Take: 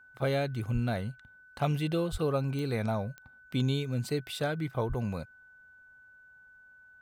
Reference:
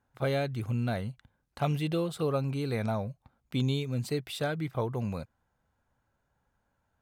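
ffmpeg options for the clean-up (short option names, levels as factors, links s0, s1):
-filter_complex "[0:a]adeclick=t=4,bandreject=f=1500:w=30,asplit=3[s0][s1][s2];[s0]afade=t=out:st=0.73:d=0.02[s3];[s1]highpass=f=140:w=0.5412,highpass=f=140:w=1.3066,afade=t=in:st=0.73:d=0.02,afade=t=out:st=0.85:d=0.02[s4];[s2]afade=t=in:st=0.85:d=0.02[s5];[s3][s4][s5]amix=inputs=3:normalize=0,asplit=3[s6][s7][s8];[s6]afade=t=out:st=2.11:d=0.02[s9];[s7]highpass=f=140:w=0.5412,highpass=f=140:w=1.3066,afade=t=in:st=2.11:d=0.02,afade=t=out:st=2.23:d=0.02[s10];[s8]afade=t=in:st=2.23:d=0.02[s11];[s9][s10][s11]amix=inputs=3:normalize=0,asplit=3[s12][s13][s14];[s12]afade=t=out:st=4.88:d=0.02[s15];[s13]highpass=f=140:w=0.5412,highpass=f=140:w=1.3066,afade=t=in:st=4.88:d=0.02,afade=t=out:st=5:d=0.02[s16];[s14]afade=t=in:st=5:d=0.02[s17];[s15][s16][s17]amix=inputs=3:normalize=0"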